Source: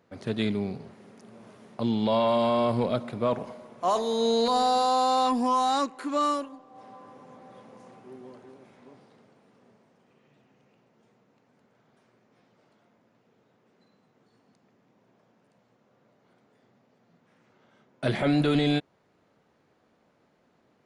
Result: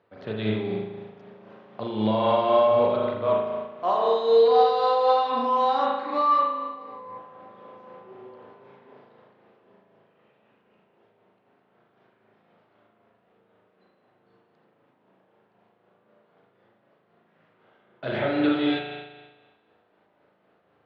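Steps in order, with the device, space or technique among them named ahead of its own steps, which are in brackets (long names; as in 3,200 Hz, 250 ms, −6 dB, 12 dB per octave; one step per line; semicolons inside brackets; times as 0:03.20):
combo amplifier with spring reverb and tremolo (spring reverb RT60 1.3 s, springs 37 ms, chirp 55 ms, DRR −3 dB; amplitude tremolo 3.9 Hz, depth 33%; loudspeaker in its box 100–3,800 Hz, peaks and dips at 150 Hz −8 dB, 250 Hz −10 dB, 2,200 Hz −3 dB)
0:06.05–0:07.18: EQ curve with evenly spaced ripples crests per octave 0.93, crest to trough 10 dB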